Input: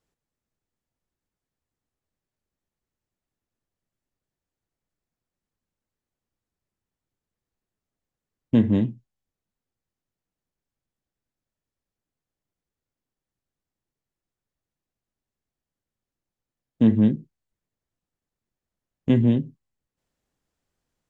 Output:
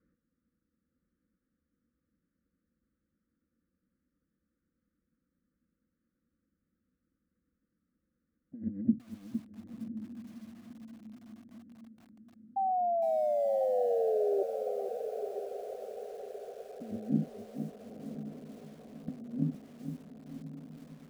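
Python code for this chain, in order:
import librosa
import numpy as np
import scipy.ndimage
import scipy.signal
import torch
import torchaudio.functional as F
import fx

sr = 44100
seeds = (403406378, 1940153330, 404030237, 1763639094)

p1 = scipy.signal.sosfilt(scipy.signal.cheby1(3, 1.0, [510.0, 1200.0], 'bandstop', fs=sr, output='sos'), x)
p2 = fx.tilt_eq(p1, sr, slope=-4.0)
p3 = fx.over_compress(p2, sr, threshold_db=-21.0, ratio=-0.5)
p4 = fx.fixed_phaser(p3, sr, hz=610.0, stages=8)
p5 = fx.spec_paint(p4, sr, seeds[0], shape='fall', start_s=12.56, length_s=1.87, low_hz=390.0, high_hz=790.0, level_db=-25.0)
p6 = fx.bandpass_edges(p5, sr, low_hz=140.0, high_hz=2500.0)
p7 = p6 + fx.echo_diffused(p6, sr, ms=1045, feedback_pct=53, wet_db=-9, dry=0)
p8 = fx.echo_crushed(p7, sr, ms=460, feedback_pct=35, bits=8, wet_db=-8.5)
y = p8 * librosa.db_to_amplitude(-4.5)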